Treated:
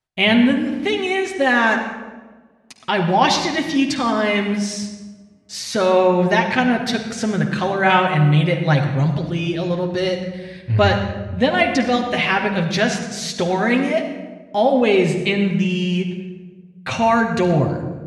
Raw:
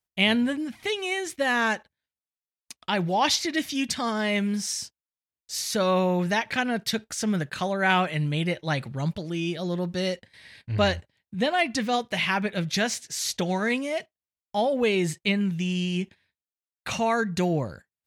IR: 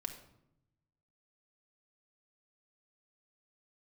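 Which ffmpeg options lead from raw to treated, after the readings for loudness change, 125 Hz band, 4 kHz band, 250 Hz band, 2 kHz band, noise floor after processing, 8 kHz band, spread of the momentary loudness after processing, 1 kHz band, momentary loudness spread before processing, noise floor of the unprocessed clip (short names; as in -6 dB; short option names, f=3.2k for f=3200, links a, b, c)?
+8.0 dB, +10.0 dB, +4.5 dB, +8.5 dB, +7.0 dB, -46 dBFS, +0.5 dB, 12 LU, +8.5 dB, 9 LU, under -85 dBFS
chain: -filter_complex "[0:a]aemphasis=mode=reproduction:type=50fm[a];[1:a]atrim=start_sample=2205,asetrate=22491,aresample=44100[b];[a][b]afir=irnorm=-1:irlink=0,volume=5.5dB"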